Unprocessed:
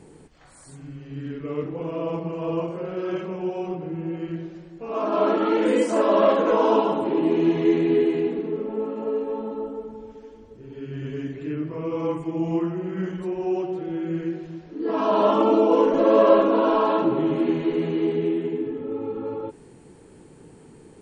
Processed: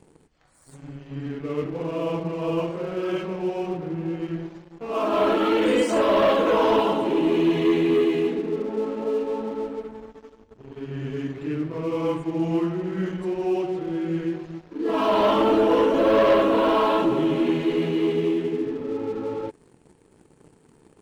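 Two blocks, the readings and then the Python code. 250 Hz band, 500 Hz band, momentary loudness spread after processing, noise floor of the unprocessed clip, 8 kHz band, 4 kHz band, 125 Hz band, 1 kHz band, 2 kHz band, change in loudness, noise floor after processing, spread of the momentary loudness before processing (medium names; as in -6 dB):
0.0 dB, -0.5 dB, 13 LU, -49 dBFS, no reading, +6.0 dB, +1.0 dB, 0.0 dB, +4.0 dB, 0.0 dB, -58 dBFS, 16 LU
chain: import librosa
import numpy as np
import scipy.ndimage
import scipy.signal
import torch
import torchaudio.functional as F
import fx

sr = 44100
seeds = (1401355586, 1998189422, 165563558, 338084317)

y = fx.dynamic_eq(x, sr, hz=3100.0, q=1.2, threshold_db=-46.0, ratio=4.0, max_db=7)
y = fx.leveller(y, sr, passes=2)
y = y * 10.0 ** (-6.5 / 20.0)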